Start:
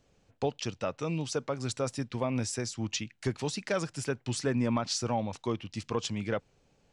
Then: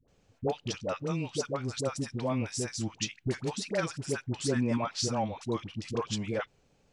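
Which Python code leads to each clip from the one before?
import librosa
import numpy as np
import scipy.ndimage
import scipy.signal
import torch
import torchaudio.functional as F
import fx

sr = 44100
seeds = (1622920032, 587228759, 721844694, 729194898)

y = fx.dispersion(x, sr, late='highs', ms=83.0, hz=680.0)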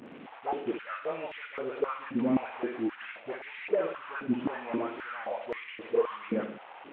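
y = fx.delta_mod(x, sr, bps=16000, step_db=-42.0)
y = fx.echo_feedback(y, sr, ms=61, feedback_pct=57, wet_db=-9.0)
y = fx.filter_held_highpass(y, sr, hz=3.8, low_hz=240.0, high_hz=2000.0)
y = y * librosa.db_to_amplitude(-1.5)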